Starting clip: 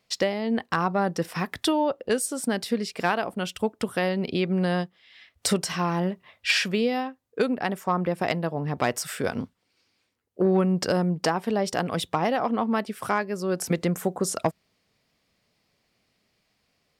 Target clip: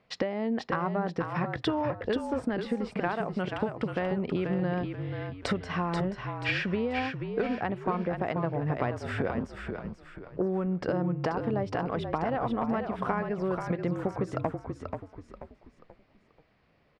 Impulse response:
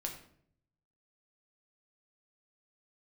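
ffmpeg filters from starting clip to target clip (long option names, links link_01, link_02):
-filter_complex "[0:a]lowpass=1900,acompressor=threshold=-34dB:ratio=5,asplit=2[link_01][link_02];[link_02]asplit=4[link_03][link_04][link_05][link_06];[link_03]adelay=484,afreqshift=-44,volume=-6dB[link_07];[link_04]adelay=968,afreqshift=-88,volume=-14.6dB[link_08];[link_05]adelay=1452,afreqshift=-132,volume=-23.3dB[link_09];[link_06]adelay=1936,afreqshift=-176,volume=-31.9dB[link_10];[link_07][link_08][link_09][link_10]amix=inputs=4:normalize=0[link_11];[link_01][link_11]amix=inputs=2:normalize=0,volume=6dB"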